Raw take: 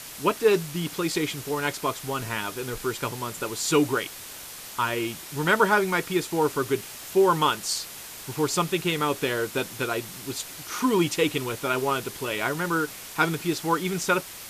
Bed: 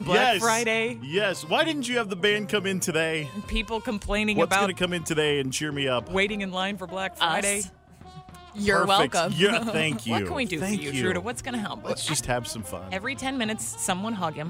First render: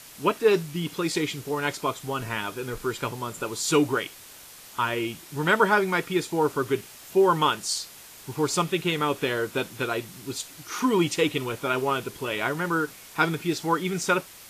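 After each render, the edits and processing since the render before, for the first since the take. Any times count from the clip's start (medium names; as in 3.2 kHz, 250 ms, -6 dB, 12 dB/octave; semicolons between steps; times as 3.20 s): noise print and reduce 6 dB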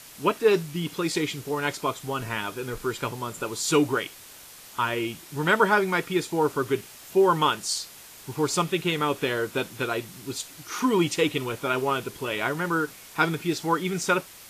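no audible change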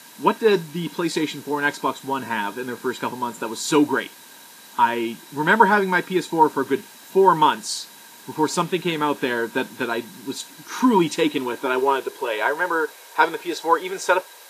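high-pass sweep 220 Hz -> 480 Hz, 11.15–12.34 s; small resonant body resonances 940/1600/3900 Hz, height 14 dB, ringing for 45 ms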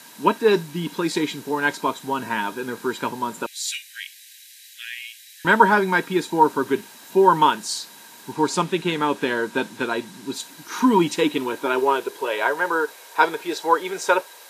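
3.46–5.45 s: steep high-pass 1.8 kHz 72 dB/octave; 8.32–10.34 s: low-pass 11 kHz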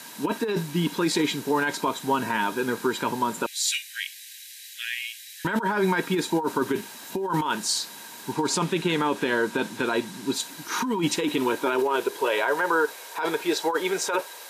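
compressor with a negative ratio -22 dBFS, ratio -1; peak limiter -13.5 dBFS, peak gain reduction 6.5 dB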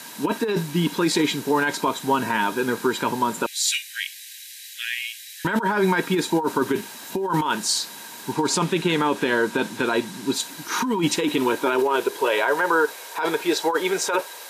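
trim +3 dB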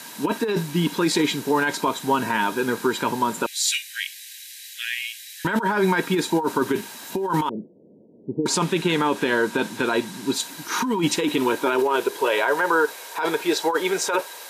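7.49–8.46 s: steep low-pass 550 Hz 48 dB/octave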